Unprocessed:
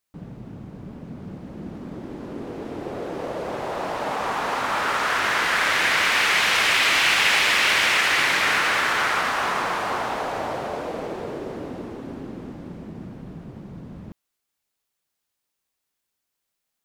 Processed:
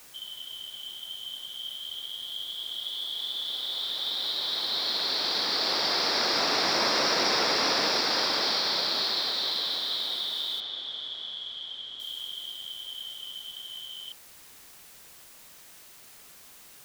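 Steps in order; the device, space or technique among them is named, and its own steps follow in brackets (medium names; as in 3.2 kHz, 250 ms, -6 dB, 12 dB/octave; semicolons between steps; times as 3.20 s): split-band scrambled radio (four frequency bands reordered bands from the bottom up 3412; band-pass 340–3200 Hz; white noise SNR 20 dB); 10.60–12.00 s: distance through air 130 m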